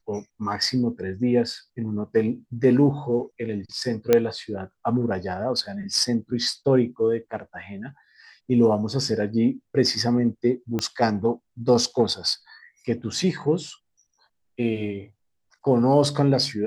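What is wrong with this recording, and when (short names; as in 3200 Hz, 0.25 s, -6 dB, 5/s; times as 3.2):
4.13 pop -5 dBFS
10.79 pop -12 dBFS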